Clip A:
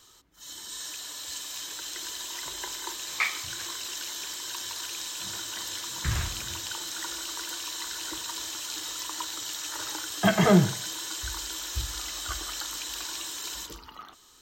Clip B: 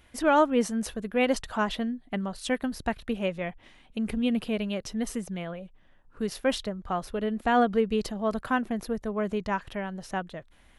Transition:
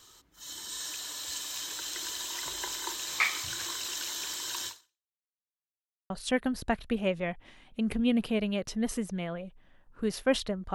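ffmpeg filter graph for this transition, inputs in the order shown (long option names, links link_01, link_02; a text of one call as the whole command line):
ffmpeg -i cue0.wav -i cue1.wav -filter_complex "[0:a]apad=whole_dur=10.74,atrim=end=10.74,asplit=2[link_01][link_02];[link_01]atrim=end=5.18,asetpts=PTS-STARTPTS,afade=type=out:start_time=4.67:duration=0.51:curve=exp[link_03];[link_02]atrim=start=5.18:end=6.1,asetpts=PTS-STARTPTS,volume=0[link_04];[1:a]atrim=start=2.28:end=6.92,asetpts=PTS-STARTPTS,afade=type=in:duration=0.004:curve=hsin[link_05];[link_03][link_04][link_05]concat=n=3:v=0:a=1" out.wav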